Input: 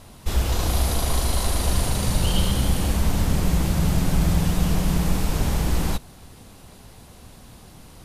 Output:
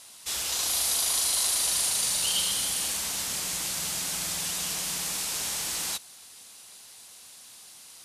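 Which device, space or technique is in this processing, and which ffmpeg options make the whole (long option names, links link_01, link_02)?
piezo pickup straight into a mixer: -af "lowpass=8900,aderivative,volume=8.5dB"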